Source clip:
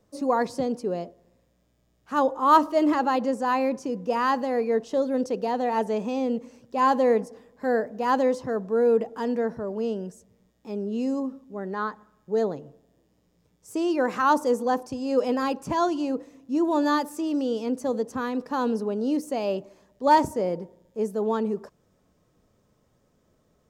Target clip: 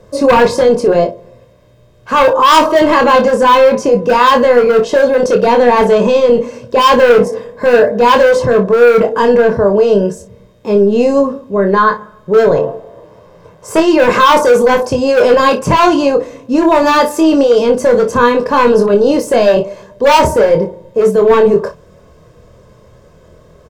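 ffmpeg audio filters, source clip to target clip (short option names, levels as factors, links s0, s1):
-filter_complex "[0:a]aemphasis=mode=reproduction:type=cd,aecho=1:1:1.9:0.57,asettb=1/sr,asplit=3[s0][s1][s2];[s0]atrim=end=12.554[s3];[s1]atrim=start=12.55:end=13.8,asetpts=PTS-STARTPTS,afade=t=in:d=0.004:c=qsin,afade=t=out:st=1.246:d=0.004:c=qsin,equalizer=f=910:w=0.67:g=12.5[s4];[s2]atrim=start=13.796[s5];[s3][s4]acrossfade=d=0.004:c1=hsin:c2=qsin[s6];[s6][s5]acrossfade=d=0.004:c1=qsin:c2=hsin,asoftclip=type=hard:threshold=0.126,apsyclip=22.4,asplit=2[s7][s8];[s8]aecho=0:1:25|57:0.531|0.2[s9];[s7][s9]amix=inputs=2:normalize=0,volume=0.501"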